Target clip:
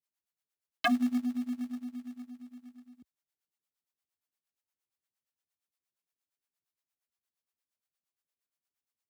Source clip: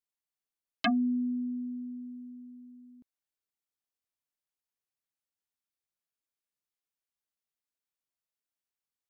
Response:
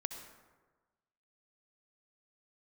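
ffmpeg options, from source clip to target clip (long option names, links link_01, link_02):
-filter_complex "[0:a]highpass=frequency=60:width=0.5412,highpass=frequency=60:width=1.3066,acrossover=split=480[link_01][link_02];[link_01]aeval=exprs='val(0)*(1-1/2+1/2*cos(2*PI*8.6*n/s))':channel_layout=same[link_03];[link_02]aeval=exprs='val(0)*(1-1/2-1/2*cos(2*PI*8.6*n/s))':channel_layout=same[link_04];[link_03][link_04]amix=inputs=2:normalize=0,asplit=2[link_05][link_06];[link_06]acrusher=bits=2:mode=log:mix=0:aa=0.000001,volume=-5.5dB[link_07];[link_05][link_07]amix=inputs=2:normalize=0"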